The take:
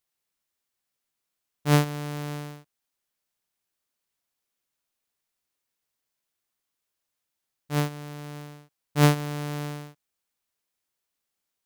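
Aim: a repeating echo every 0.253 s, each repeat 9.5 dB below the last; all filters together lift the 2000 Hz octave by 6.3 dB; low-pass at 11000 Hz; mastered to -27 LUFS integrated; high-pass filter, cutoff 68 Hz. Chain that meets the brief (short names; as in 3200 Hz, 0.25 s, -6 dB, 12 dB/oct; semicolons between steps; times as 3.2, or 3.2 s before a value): HPF 68 Hz; LPF 11000 Hz; bell 2000 Hz +8 dB; feedback echo 0.253 s, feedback 33%, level -9.5 dB; gain -1 dB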